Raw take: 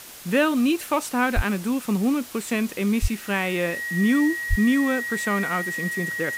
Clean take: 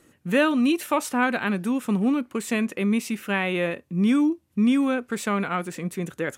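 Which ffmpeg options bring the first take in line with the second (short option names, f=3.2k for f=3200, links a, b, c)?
-filter_complex "[0:a]bandreject=f=1.9k:w=30,asplit=3[a][b][c];[a]afade=t=out:st=1.35:d=0.02[d];[b]highpass=f=140:w=0.5412,highpass=f=140:w=1.3066,afade=t=in:st=1.35:d=0.02,afade=t=out:st=1.47:d=0.02[e];[c]afade=t=in:st=1.47:d=0.02[f];[d][e][f]amix=inputs=3:normalize=0,asplit=3[g][h][i];[g]afade=t=out:st=3.01:d=0.02[j];[h]highpass=f=140:w=0.5412,highpass=f=140:w=1.3066,afade=t=in:st=3.01:d=0.02,afade=t=out:st=3.13:d=0.02[k];[i]afade=t=in:st=3.13:d=0.02[l];[j][k][l]amix=inputs=3:normalize=0,asplit=3[m][n][o];[m]afade=t=out:st=4.49:d=0.02[p];[n]highpass=f=140:w=0.5412,highpass=f=140:w=1.3066,afade=t=in:st=4.49:d=0.02,afade=t=out:st=4.61:d=0.02[q];[o]afade=t=in:st=4.61:d=0.02[r];[p][q][r]amix=inputs=3:normalize=0,afwtdn=0.0089"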